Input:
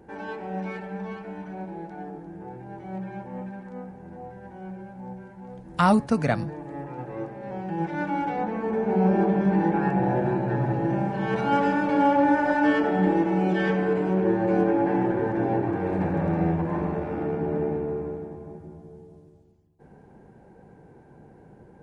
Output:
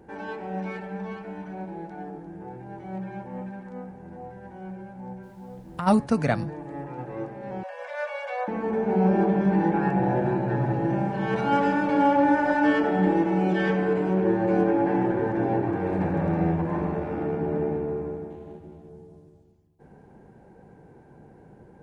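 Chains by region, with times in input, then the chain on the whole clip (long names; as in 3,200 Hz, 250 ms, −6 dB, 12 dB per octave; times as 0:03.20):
0:05.22–0:05.86: parametric band 4,500 Hz −11 dB 2.2 octaves + downward compressor 10 to 1, threshold −26 dBFS + background noise pink −66 dBFS
0:07.63–0:08.48: Butterworth high-pass 510 Hz 96 dB per octave + comb filter 1.8 ms, depth 85%
0:18.30–0:18.89: running median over 25 samples + parametric band 130 Hz −7 dB 0.66 octaves
whole clip: no processing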